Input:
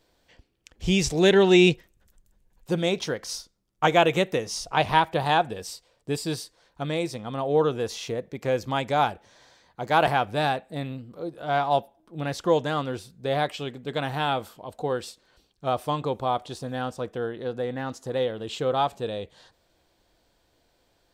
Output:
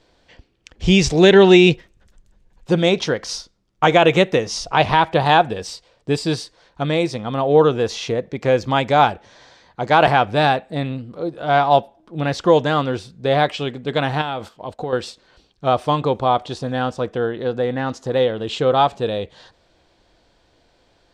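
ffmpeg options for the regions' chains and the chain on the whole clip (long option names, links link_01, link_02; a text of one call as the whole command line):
ffmpeg -i in.wav -filter_complex "[0:a]asettb=1/sr,asplit=3[link_01][link_02][link_03];[link_01]atrim=end=14.214[link_04];[link_02]atrim=start=14.21:end=14.93,asetpts=PTS-STARTPTS,afade=type=in:duration=0.004:curve=qsin,afade=type=out:start_time=0.716:duration=0.004:curve=qsin,agate=range=-9dB:threshold=-47dB:ratio=16:release=100:detection=peak,acompressor=threshold=-31dB:ratio=4:attack=3.2:release=140:knee=1:detection=peak[link_05];[link_03]atrim=start=14.926[link_06];[link_04][link_05]acrossfade=duration=0.004:curve1=hsin:curve2=qsin[link_07];[link_07][link_06]acrossfade=duration=0.004:curve1=qsin:curve2=hsin,lowpass=5800,alimiter=level_in=9.5dB:limit=-1dB:release=50:level=0:latency=1,volume=-1dB" out.wav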